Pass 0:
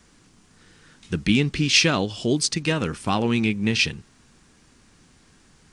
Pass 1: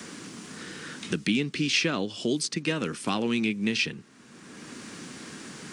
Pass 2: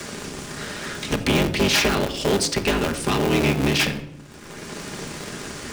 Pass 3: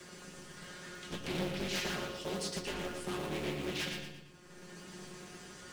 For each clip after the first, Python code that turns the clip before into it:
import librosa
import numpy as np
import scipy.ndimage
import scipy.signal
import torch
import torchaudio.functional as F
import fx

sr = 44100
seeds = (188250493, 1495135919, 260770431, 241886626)

y1 = scipy.signal.sosfilt(scipy.signal.cheby1(2, 1.0, 220.0, 'highpass', fs=sr, output='sos'), x)
y1 = fx.peak_eq(y1, sr, hz=800.0, db=-5.0, octaves=0.79)
y1 = fx.band_squash(y1, sr, depth_pct=70)
y1 = y1 * 10.0 ** (-3.0 / 20.0)
y2 = fx.cycle_switch(y1, sr, every=3, mode='inverted')
y2 = fx.leveller(y2, sr, passes=2)
y2 = fx.room_shoebox(y2, sr, seeds[0], volume_m3=2600.0, walls='furnished', distance_m=1.3)
y3 = fx.comb_fb(y2, sr, f0_hz=180.0, decay_s=0.2, harmonics='all', damping=0.0, mix_pct=90)
y3 = fx.echo_feedback(y3, sr, ms=116, feedback_pct=42, wet_db=-5)
y3 = fx.doppler_dist(y3, sr, depth_ms=0.53)
y3 = y3 * 10.0 ** (-8.0 / 20.0)